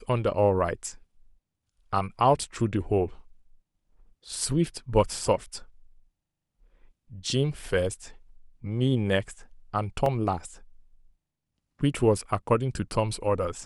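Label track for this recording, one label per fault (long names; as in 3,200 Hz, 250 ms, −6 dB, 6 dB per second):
10.060000	10.060000	drop-out 2.5 ms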